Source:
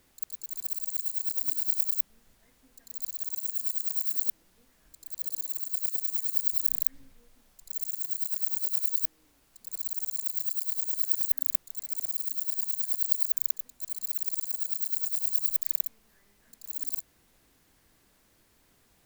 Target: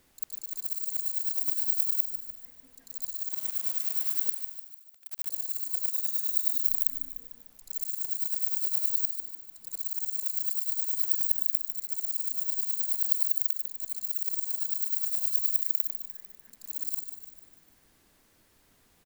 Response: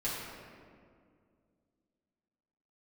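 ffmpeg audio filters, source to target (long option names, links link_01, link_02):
-filter_complex "[0:a]bandreject=frequency=50:width_type=h:width=6,bandreject=frequency=100:width_type=h:width=6,asplit=3[link_01][link_02][link_03];[link_01]afade=type=out:start_time=3.3:duration=0.02[link_04];[link_02]aeval=exprs='val(0)*gte(abs(val(0)),0.0158)':channel_layout=same,afade=type=in:start_time=3.3:duration=0.02,afade=type=out:start_time=5.28:duration=0.02[link_05];[link_03]afade=type=in:start_time=5.28:duration=0.02[link_06];[link_04][link_05][link_06]amix=inputs=3:normalize=0,asplit=2[link_07][link_08];[link_08]aecho=0:1:149|298|447|596|745|894:0.398|0.203|0.104|0.0528|0.0269|0.0137[link_09];[link_07][link_09]amix=inputs=2:normalize=0,asplit=3[link_10][link_11][link_12];[link_10]afade=type=out:start_time=5.91:duration=0.02[link_13];[link_11]afreqshift=-290,afade=type=in:start_time=5.91:duration=0.02,afade=type=out:start_time=6.57:duration=0.02[link_14];[link_12]afade=type=in:start_time=6.57:duration=0.02[link_15];[link_13][link_14][link_15]amix=inputs=3:normalize=0"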